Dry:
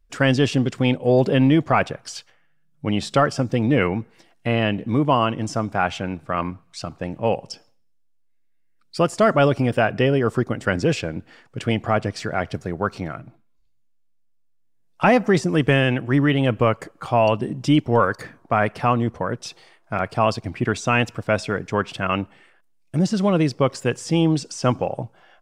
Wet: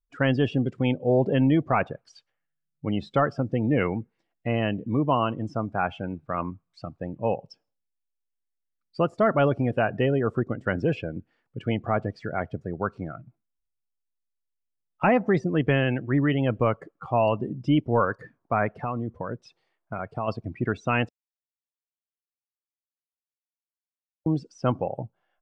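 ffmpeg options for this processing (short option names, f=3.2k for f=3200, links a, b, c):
-filter_complex "[0:a]asplit=3[a][b][c];[a]afade=t=out:st=18.81:d=0.02[d];[b]acompressor=threshold=-21dB:ratio=3:attack=3.2:release=140:knee=1:detection=peak,afade=t=in:st=18.81:d=0.02,afade=t=out:st=20.27:d=0.02[e];[c]afade=t=in:st=20.27:d=0.02[f];[d][e][f]amix=inputs=3:normalize=0,asplit=3[g][h][i];[g]atrim=end=21.09,asetpts=PTS-STARTPTS,afade=t=out:st=21.086:d=0.004:c=hsin[j];[h]atrim=start=21.09:end=24.26,asetpts=PTS-STARTPTS,volume=0[k];[i]atrim=start=24.26,asetpts=PTS-STARTPTS,afade=t=in:d=0.004:c=hsin[l];[j][k][l]concat=n=3:v=0:a=1,aemphasis=mode=reproduction:type=50kf,afftdn=nr=17:nf=-31,volume=-4.5dB"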